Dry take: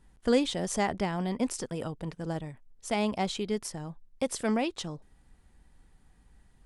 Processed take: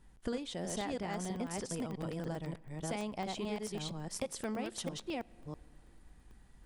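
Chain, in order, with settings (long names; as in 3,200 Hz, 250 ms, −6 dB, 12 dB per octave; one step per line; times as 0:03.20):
delay that plays each chunk backwards 326 ms, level −2.5 dB
downward compressor 6 to 1, threshold −34 dBFS, peak gain reduction 16 dB
on a send at −23 dB: convolution reverb RT60 2.7 s, pre-delay 5 ms
on the sum: regular buffer underruns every 0.11 s, samples 64, zero, from 0:00.70
level −1 dB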